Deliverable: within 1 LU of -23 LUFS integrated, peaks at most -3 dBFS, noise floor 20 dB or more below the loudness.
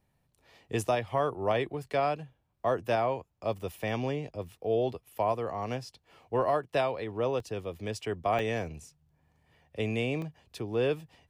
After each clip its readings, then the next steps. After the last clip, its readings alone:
dropouts 3; longest dropout 1.7 ms; loudness -32.0 LUFS; peak level -17.0 dBFS; loudness target -23.0 LUFS
-> interpolate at 7.40/8.39/10.22 s, 1.7 ms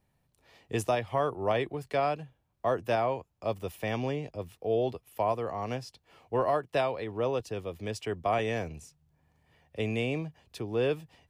dropouts 0; loudness -32.0 LUFS; peak level -17.0 dBFS; loudness target -23.0 LUFS
-> trim +9 dB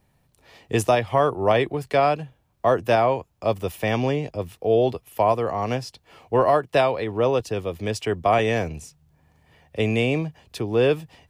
loudness -23.0 LUFS; peak level -8.0 dBFS; noise floor -66 dBFS

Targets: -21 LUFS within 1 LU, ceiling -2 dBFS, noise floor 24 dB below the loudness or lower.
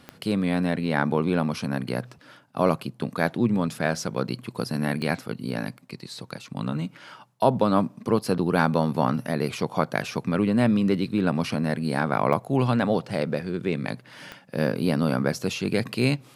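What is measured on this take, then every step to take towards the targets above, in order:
clicks found 4; loudness -25.5 LUFS; peak level -5.0 dBFS; loudness target -21.0 LUFS
-> de-click; trim +4.5 dB; peak limiter -2 dBFS

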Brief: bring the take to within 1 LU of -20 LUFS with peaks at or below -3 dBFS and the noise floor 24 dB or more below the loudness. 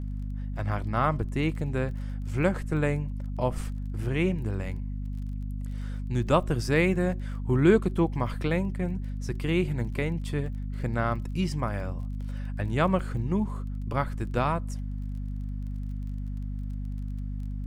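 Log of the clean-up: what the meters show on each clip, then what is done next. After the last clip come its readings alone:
tick rate 24 per s; hum 50 Hz; highest harmonic 250 Hz; hum level -30 dBFS; loudness -29.5 LUFS; peak level -7.0 dBFS; loudness target -20.0 LUFS
-> de-click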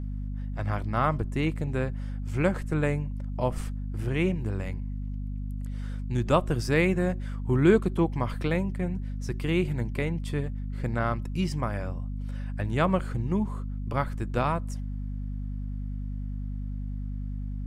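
tick rate 0.057 per s; hum 50 Hz; highest harmonic 250 Hz; hum level -30 dBFS
-> hum notches 50/100/150/200/250 Hz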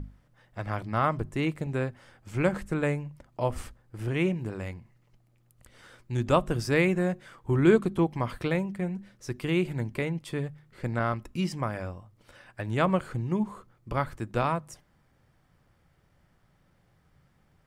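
hum not found; loudness -29.5 LUFS; peak level -8.5 dBFS; loudness target -20.0 LUFS
-> trim +9.5 dB; peak limiter -3 dBFS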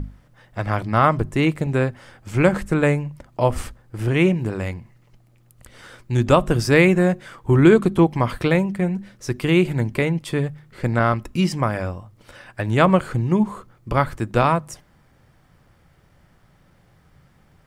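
loudness -20.0 LUFS; peak level -3.0 dBFS; noise floor -57 dBFS

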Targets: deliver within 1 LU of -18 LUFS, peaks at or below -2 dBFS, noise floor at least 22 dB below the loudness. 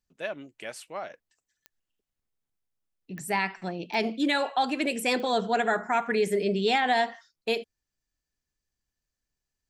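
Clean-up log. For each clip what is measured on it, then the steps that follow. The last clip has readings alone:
clicks found 4; loudness -27.5 LUFS; peak level -13.5 dBFS; loudness target -18.0 LUFS
-> de-click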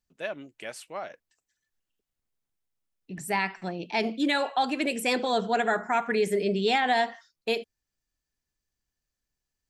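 clicks found 0; loudness -27.5 LUFS; peak level -13.5 dBFS; loudness target -18.0 LUFS
-> trim +9.5 dB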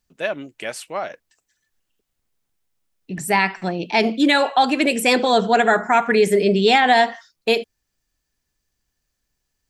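loudness -18.0 LUFS; peak level -4.0 dBFS; noise floor -77 dBFS

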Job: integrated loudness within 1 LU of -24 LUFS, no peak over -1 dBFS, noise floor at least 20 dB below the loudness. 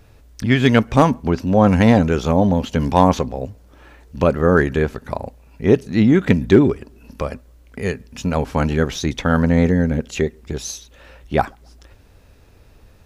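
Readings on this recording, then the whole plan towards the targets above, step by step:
loudness -17.5 LUFS; peak level -1.5 dBFS; loudness target -24.0 LUFS
-> trim -6.5 dB

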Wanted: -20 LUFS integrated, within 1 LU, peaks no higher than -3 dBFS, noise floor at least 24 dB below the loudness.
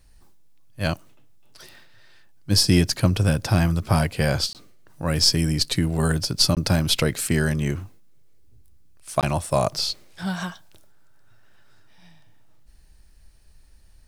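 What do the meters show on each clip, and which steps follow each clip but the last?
dropouts 3; longest dropout 18 ms; loudness -22.0 LUFS; peak level -4.0 dBFS; loudness target -20.0 LUFS
-> interpolate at 4.53/6.55/9.21 s, 18 ms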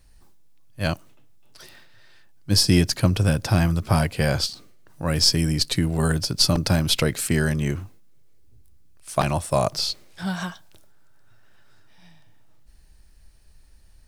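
dropouts 0; loudness -22.0 LUFS; peak level -4.0 dBFS; loudness target -20.0 LUFS
-> trim +2 dB; peak limiter -3 dBFS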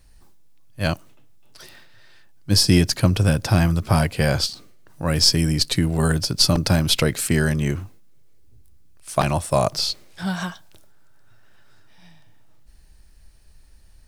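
loudness -20.0 LUFS; peak level -3.0 dBFS; noise floor -50 dBFS

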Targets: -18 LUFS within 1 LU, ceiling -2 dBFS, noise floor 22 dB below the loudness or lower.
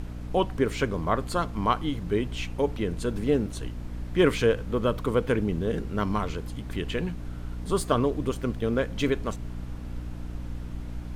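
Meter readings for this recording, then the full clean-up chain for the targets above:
hum 60 Hz; highest harmonic 300 Hz; hum level -34 dBFS; noise floor -37 dBFS; noise floor target -51 dBFS; loudness -28.5 LUFS; peak level -8.0 dBFS; loudness target -18.0 LUFS
-> hum notches 60/120/180/240/300 Hz; noise print and reduce 14 dB; trim +10.5 dB; peak limiter -2 dBFS

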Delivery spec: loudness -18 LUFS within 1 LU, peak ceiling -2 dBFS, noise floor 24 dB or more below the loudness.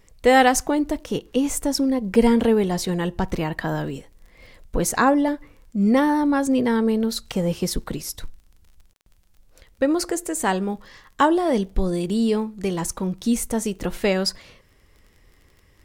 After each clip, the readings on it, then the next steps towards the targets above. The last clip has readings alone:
tick rate 29 per s; loudness -22.0 LUFS; peak level -3.0 dBFS; loudness target -18.0 LUFS
-> de-click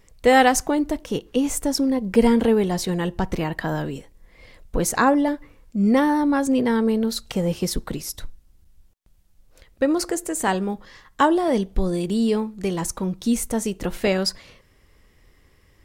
tick rate 0 per s; loudness -22.0 LUFS; peak level -3.0 dBFS; loudness target -18.0 LUFS
-> trim +4 dB; peak limiter -2 dBFS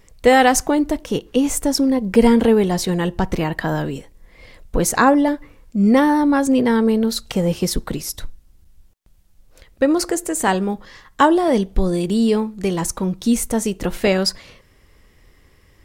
loudness -18.5 LUFS; peak level -2.0 dBFS; noise floor -54 dBFS

